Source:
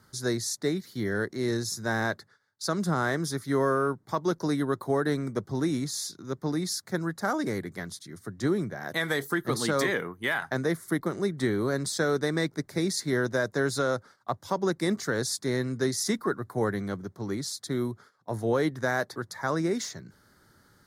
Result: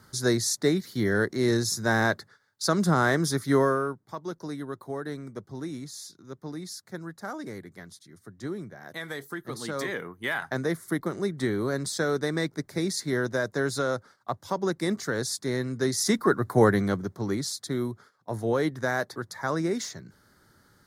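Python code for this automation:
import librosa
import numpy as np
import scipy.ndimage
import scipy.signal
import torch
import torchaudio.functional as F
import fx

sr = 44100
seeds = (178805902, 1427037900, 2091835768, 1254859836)

y = fx.gain(x, sr, db=fx.line((3.56, 4.5), (4.07, -8.0), (9.53, -8.0), (10.4, -0.5), (15.74, -0.5), (16.53, 9.0), (17.79, 0.0)))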